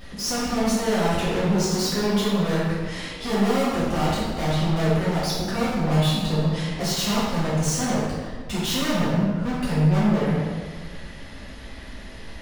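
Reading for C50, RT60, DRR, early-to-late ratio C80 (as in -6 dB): -2.0 dB, 1.6 s, -9.5 dB, 1.0 dB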